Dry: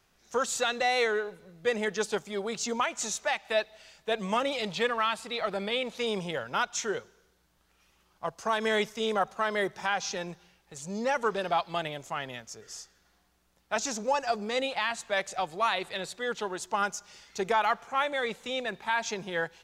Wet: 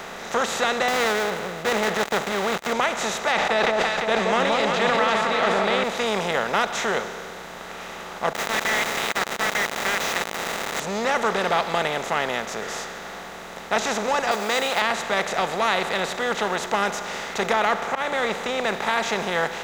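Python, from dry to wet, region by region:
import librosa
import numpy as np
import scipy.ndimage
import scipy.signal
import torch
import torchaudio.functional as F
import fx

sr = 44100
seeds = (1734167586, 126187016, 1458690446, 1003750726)

y = fx.chain(x, sr, fx.dead_time(dead_ms=0.16),
    fx.highpass(hz=47.0, slope=12),
    fx.transient(attack_db=-1, sustain_db=5), at=(0.88, 2.73))
y = fx.chain(y, sr, fx.lowpass(hz=4900.0, slope=12),
    fx.echo_alternate(ms=172, hz=1100.0, feedback_pct=58, wet_db=-2.5),
    fx.sustainer(db_per_s=52.0), at=(3.32, 5.84))
y = fx.chain(y, sr, fx.crossing_spikes(level_db=-29.0),
    fx.ladder_highpass(hz=1800.0, resonance_pct=65),
    fx.quant_companded(bits=2), at=(8.33, 10.8))
y = fx.chain(y, sr, fx.block_float(bits=7),
    fx.riaa(side='recording'), at=(14.31, 14.82))
y = fx.chain(y, sr, fx.high_shelf(hz=3900.0, db=-8.5),
    fx.auto_swell(attack_ms=195.0), at=(17.53, 18.64))
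y = fx.bin_compress(y, sr, power=0.4)
y = fx.high_shelf(y, sr, hz=6400.0, db=-7.5)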